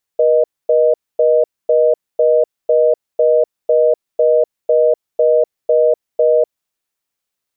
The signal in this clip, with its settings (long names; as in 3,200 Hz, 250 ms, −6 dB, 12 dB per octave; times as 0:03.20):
call progress tone reorder tone, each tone −11.5 dBFS 6.25 s